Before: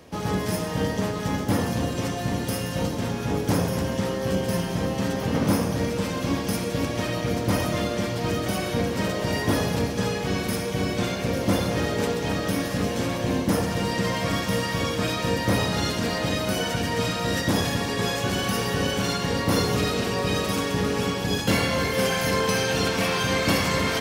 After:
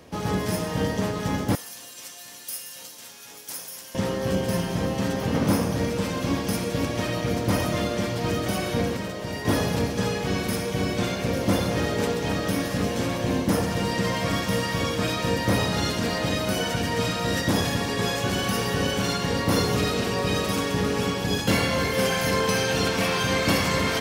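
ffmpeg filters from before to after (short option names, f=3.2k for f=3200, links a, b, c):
-filter_complex "[0:a]asettb=1/sr,asplit=3[a][b][c];[a]atrim=end=1.554[d];[b]atrim=start=1.55:end=3.95,asetpts=PTS-STARTPTS,afade=t=in:d=0.004:c=qsin,afade=t=out:st=2.396:d=0.004:c=qsin,aderivative[e];[c]atrim=start=3.946[f];[d][e]acrossfade=d=0.004:c1=hsin:c2=qsin[g];[g][f]acrossfade=d=0.004:c1=qsin:c2=hsin,asplit=3[h][i][j];[h]atrim=end=8.972[k];[i]atrim=start=8.968:end=9.452,asetpts=PTS-STARTPTS,volume=-6dB[l];[j]atrim=start=9.448[m];[k][l]acrossfade=d=0.004:c1=hsin:c2=hsin[n];[n][m]acrossfade=d=0.004:c1=hsin:c2=hsin"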